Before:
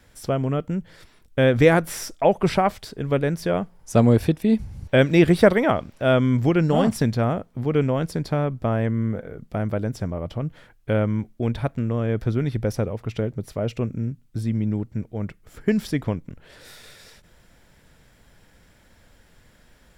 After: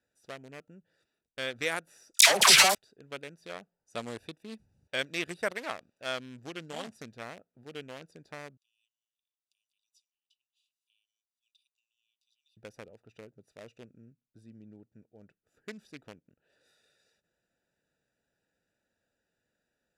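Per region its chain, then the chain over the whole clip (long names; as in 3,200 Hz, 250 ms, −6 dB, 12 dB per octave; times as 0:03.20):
0:02.14–0:02.75: leveller curve on the samples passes 5 + all-pass dispersion lows, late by 72 ms, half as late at 1,100 Hz + background raised ahead of every attack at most 29 dB per second
0:08.57–0:12.57: upward compression, threshold −29 dBFS + Butterworth high-pass 2,800 Hz 72 dB per octave
whole clip: adaptive Wiener filter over 41 samples; low-pass filter 9,800 Hz 12 dB per octave; first difference; level +4 dB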